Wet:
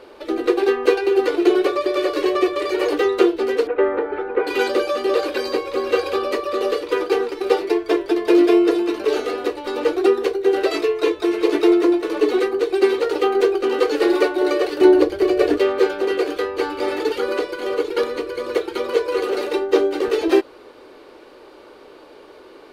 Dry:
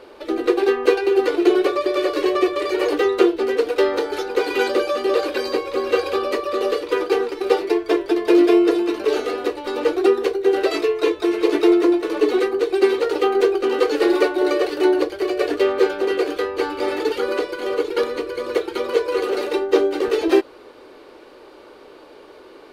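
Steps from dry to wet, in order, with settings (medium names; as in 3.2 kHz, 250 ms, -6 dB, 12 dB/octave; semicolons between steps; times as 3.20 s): 3.67–4.47 s: low-pass 2.1 kHz 24 dB/octave; 14.81–15.58 s: bass shelf 380 Hz +10 dB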